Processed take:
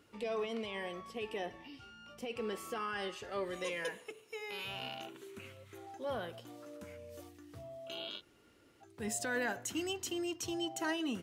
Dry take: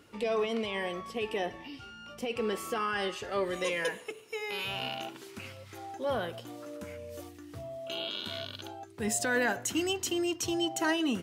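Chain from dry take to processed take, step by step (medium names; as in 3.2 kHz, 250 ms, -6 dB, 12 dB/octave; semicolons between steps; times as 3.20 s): 5.06–5.87 s: graphic EQ with 31 bands 400 Hz +7 dB, 800 Hz -6 dB, 5 kHz -10 dB; 8.19–8.83 s: room tone, crossfade 0.06 s; trim -7 dB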